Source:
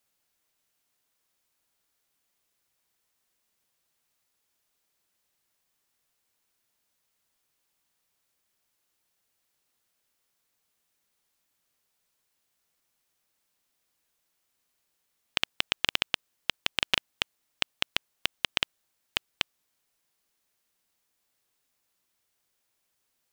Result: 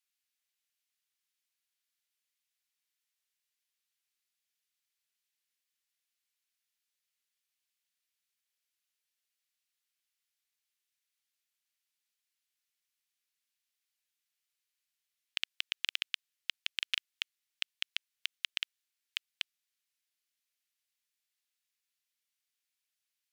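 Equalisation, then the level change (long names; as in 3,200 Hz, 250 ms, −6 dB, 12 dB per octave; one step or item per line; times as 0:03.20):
Bessel high-pass filter 2,900 Hz, order 4
spectral tilt −4 dB per octave
parametric band 12,000 Hz +3.5 dB 0.31 octaves
+2.5 dB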